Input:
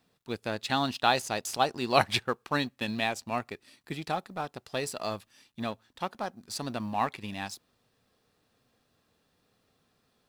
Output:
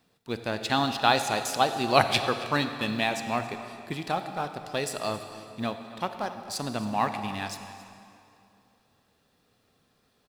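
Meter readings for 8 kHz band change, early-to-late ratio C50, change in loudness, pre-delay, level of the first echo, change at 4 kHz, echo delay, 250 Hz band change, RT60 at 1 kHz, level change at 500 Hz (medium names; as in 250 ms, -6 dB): +3.0 dB, 8.0 dB, +3.0 dB, 31 ms, -18.0 dB, +3.0 dB, 273 ms, +3.5 dB, 2.6 s, +3.0 dB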